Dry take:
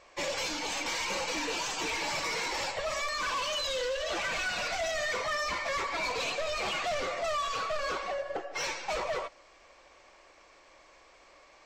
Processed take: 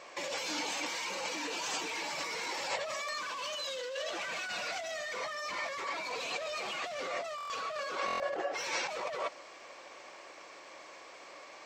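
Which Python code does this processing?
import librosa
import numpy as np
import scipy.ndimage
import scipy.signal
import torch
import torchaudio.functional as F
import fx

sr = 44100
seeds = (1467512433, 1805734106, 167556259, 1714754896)

y = scipy.signal.sosfilt(scipy.signal.butter(2, 180.0, 'highpass', fs=sr, output='sos'), x)
y = fx.over_compress(y, sr, threshold_db=-39.0, ratio=-1.0)
y = fx.buffer_glitch(y, sr, at_s=(7.36, 8.06), block=1024, repeats=5)
y = y * 10.0 ** (1.5 / 20.0)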